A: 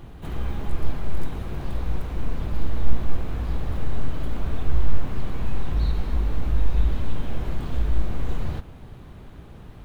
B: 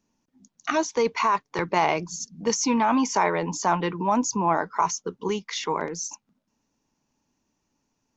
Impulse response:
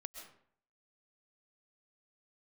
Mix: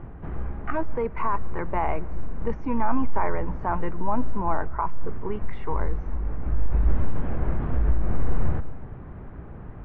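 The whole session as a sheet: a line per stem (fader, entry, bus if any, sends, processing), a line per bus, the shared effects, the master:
+2.0 dB, 0.00 s, send -11 dB, limiter -14.5 dBFS, peak gain reduction 10.5 dB; auto duck -11 dB, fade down 0.60 s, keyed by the second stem
-5.5 dB, 0.00 s, send -16 dB, dry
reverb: on, RT60 0.60 s, pre-delay 90 ms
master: LPF 1900 Hz 24 dB/oct

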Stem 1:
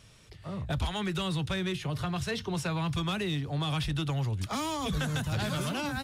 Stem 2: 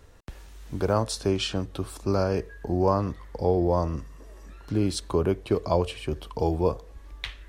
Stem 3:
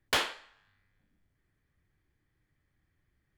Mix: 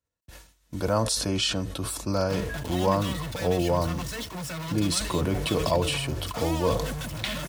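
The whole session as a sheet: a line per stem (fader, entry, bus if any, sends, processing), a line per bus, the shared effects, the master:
-8.0 dB, 1.85 s, no send, reverb removal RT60 1.8 s; AGC gain up to 11 dB; companded quantiser 2-bit
-0.5 dB, 0.00 s, no send, high shelf 3400 Hz +8.5 dB; sustainer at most 38 dB/s
-14.0 dB, 2.20 s, no send, dry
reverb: off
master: HPF 61 Hz 6 dB/oct; expander -35 dBFS; notch comb 400 Hz

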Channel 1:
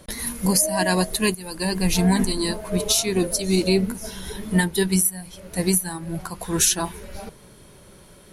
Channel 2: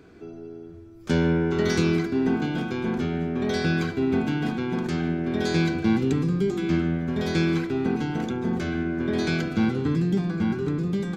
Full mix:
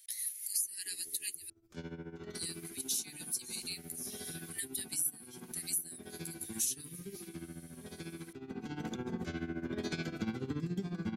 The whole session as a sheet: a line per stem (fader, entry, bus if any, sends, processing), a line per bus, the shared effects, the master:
-4.5 dB, 0.00 s, muted 1.5–2.35, no send, elliptic band-stop 100–1900 Hz; differentiator
8.44 s -12.5 dB -> 8.82 s -3.5 dB, 0.65 s, no send, tremolo 14 Hz, depth 77%; high shelf 6000 Hz +11 dB; auto duck -7 dB, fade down 2.00 s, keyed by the first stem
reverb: off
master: compressor 2:1, threshold -39 dBFS, peak gain reduction 11.5 dB

